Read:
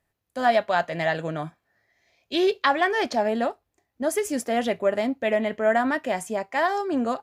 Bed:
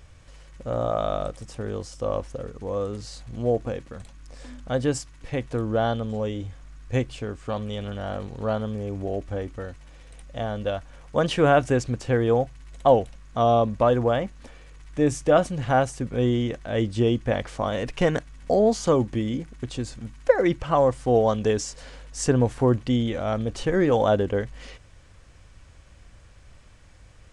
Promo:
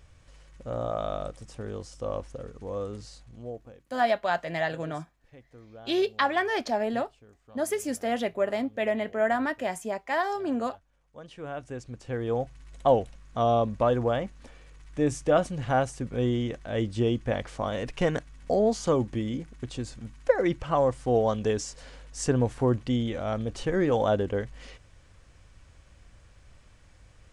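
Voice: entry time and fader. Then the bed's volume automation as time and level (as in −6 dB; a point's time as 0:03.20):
3.55 s, −4.0 dB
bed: 0:02.99 −5.5 dB
0:03.95 −24 dB
0:11.16 −24 dB
0:12.57 −4 dB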